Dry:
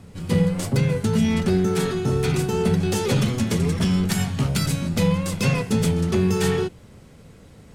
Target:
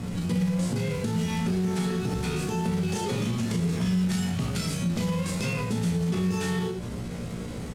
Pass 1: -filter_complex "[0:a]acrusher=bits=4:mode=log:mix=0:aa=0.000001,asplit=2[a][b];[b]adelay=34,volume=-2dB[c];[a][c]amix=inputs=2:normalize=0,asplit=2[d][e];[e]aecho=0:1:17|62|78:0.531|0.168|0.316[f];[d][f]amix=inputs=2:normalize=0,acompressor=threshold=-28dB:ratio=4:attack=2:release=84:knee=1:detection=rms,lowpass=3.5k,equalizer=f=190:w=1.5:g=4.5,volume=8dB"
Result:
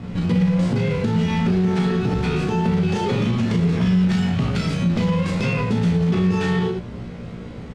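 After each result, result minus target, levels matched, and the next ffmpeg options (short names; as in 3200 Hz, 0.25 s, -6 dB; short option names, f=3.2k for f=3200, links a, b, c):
8000 Hz band -13.0 dB; compressor: peak gain reduction -7.5 dB
-filter_complex "[0:a]acrusher=bits=4:mode=log:mix=0:aa=0.000001,asplit=2[a][b];[b]adelay=34,volume=-2dB[c];[a][c]amix=inputs=2:normalize=0,asplit=2[d][e];[e]aecho=0:1:17|62|78:0.531|0.168|0.316[f];[d][f]amix=inputs=2:normalize=0,acompressor=threshold=-28dB:ratio=4:attack=2:release=84:knee=1:detection=rms,lowpass=11k,equalizer=f=190:w=1.5:g=4.5,volume=8dB"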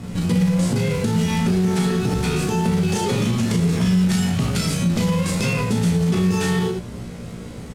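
compressor: peak gain reduction -7.5 dB
-filter_complex "[0:a]acrusher=bits=4:mode=log:mix=0:aa=0.000001,asplit=2[a][b];[b]adelay=34,volume=-2dB[c];[a][c]amix=inputs=2:normalize=0,asplit=2[d][e];[e]aecho=0:1:17|62|78:0.531|0.168|0.316[f];[d][f]amix=inputs=2:normalize=0,acompressor=threshold=-38dB:ratio=4:attack=2:release=84:knee=1:detection=rms,lowpass=11k,equalizer=f=190:w=1.5:g=4.5,volume=8dB"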